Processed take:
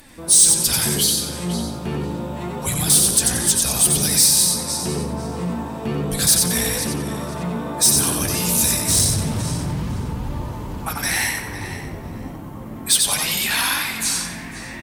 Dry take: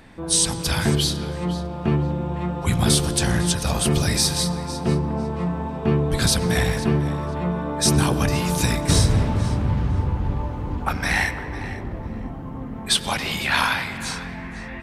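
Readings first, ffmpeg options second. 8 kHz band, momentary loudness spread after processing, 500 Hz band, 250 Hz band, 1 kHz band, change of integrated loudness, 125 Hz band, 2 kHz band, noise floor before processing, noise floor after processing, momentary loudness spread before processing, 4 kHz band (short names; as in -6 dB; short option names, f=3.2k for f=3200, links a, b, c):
+10.0 dB, 17 LU, -2.5 dB, -2.0 dB, -2.0 dB, +4.5 dB, -4.5 dB, -0.5 dB, -33 dBFS, -33 dBFS, 12 LU, +3.5 dB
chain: -filter_complex "[0:a]aemphasis=mode=production:type=cd,asplit=2[a][b];[b]alimiter=limit=-14.5dB:level=0:latency=1:release=195,volume=1dB[c];[a][c]amix=inputs=2:normalize=0,flanger=delay=3.3:depth=9.1:regen=45:speed=0.29:shape=triangular,asplit=2[d][e];[e]asplit=4[f][g][h][i];[f]adelay=91,afreqshift=54,volume=-4dB[j];[g]adelay=182,afreqshift=108,volume=-14.2dB[k];[h]adelay=273,afreqshift=162,volume=-24.3dB[l];[i]adelay=364,afreqshift=216,volume=-34.5dB[m];[j][k][l][m]amix=inputs=4:normalize=0[n];[d][n]amix=inputs=2:normalize=0,asoftclip=type=tanh:threshold=-9.5dB,crystalizer=i=2:c=0,volume=-4.5dB"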